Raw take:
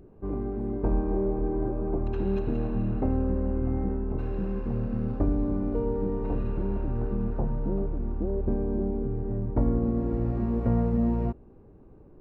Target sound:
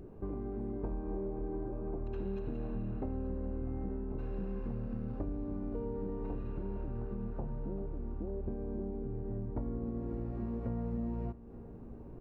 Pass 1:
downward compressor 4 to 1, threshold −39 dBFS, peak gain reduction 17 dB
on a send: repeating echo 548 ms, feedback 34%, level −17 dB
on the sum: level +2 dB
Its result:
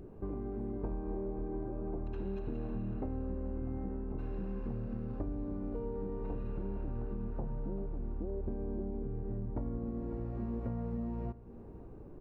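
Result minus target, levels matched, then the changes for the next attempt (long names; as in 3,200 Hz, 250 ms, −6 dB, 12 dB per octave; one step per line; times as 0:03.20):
echo 336 ms early
change: repeating echo 884 ms, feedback 34%, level −17 dB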